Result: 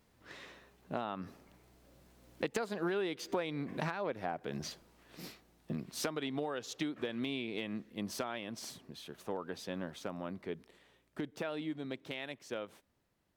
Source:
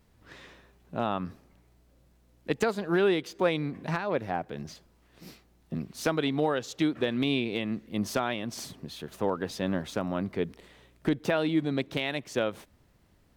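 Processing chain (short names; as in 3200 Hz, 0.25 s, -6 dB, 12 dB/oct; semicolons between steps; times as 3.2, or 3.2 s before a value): Doppler pass-by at 3.22, 9 m/s, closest 7.7 m; low shelf 130 Hz -10.5 dB; compressor 8:1, threshold -43 dBFS, peak gain reduction 21 dB; gain +10 dB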